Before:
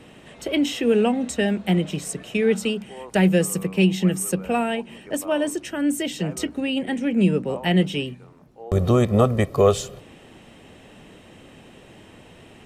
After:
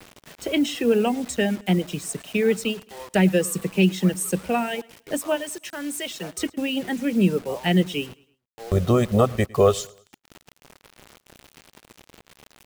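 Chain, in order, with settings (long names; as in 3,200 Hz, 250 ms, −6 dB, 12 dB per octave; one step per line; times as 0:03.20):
reverb reduction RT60 0.84 s
0:05.35–0:06.34: high-pass filter 1,200 Hz → 540 Hz 6 dB per octave
bit reduction 7 bits
repeating echo 107 ms, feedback 39%, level −23.5 dB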